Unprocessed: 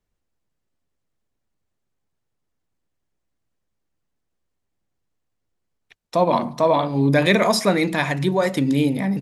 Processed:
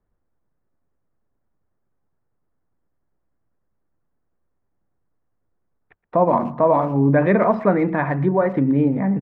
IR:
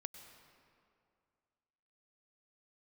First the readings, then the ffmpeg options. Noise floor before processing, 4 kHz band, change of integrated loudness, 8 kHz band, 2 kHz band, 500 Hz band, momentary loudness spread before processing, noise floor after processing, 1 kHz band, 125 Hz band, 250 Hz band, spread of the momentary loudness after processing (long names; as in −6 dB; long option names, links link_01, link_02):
−77 dBFS, below −25 dB, +1.0 dB, below −35 dB, −4.5 dB, +1.5 dB, 5 LU, −72 dBFS, +1.5 dB, +1.5 dB, +1.5 dB, 4 LU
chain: -filter_complex "[0:a]lowpass=frequency=1600:width=0.5412,lowpass=frequency=1600:width=1.3066,asplit=2[link_01][link_02];[link_02]acompressor=threshold=-28dB:ratio=6,volume=-2.5dB[link_03];[link_01][link_03]amix=inputs=2:normalize=0,asplit=2[link_04][link_05];[link_05]adelay=120,highpass=300,lowpass=3400,asoftclip=type=hard:threshold=-14.5dB,volume=-21dB[link_06];[link_04][link_06]amix=inputs=2:normalize=0"